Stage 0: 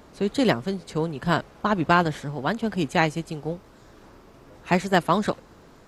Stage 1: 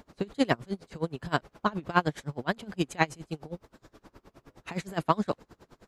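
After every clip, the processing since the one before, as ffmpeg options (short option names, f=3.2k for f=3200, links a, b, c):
-af "aeval=exprs='val(0)*pow(10,-27*(0.5-0.5*cos(2*PI*9.6*n/s))/20)':c=same"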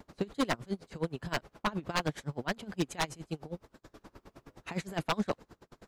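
-af "aeval=exprs='0.112*(abs(mod(val(0)/0.112+3,4)-2)-1)':c=same,acompressor=mode=upward:threshold=-45dB:ratio=2.5,agate=range=-22dB:threshold=-55dB:ratio=16:detection=peak,volume=-1.5dB"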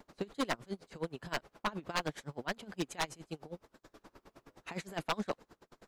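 -af "equalizer=f=76:w=0.43:g=-7.5,volume=-2.5dB"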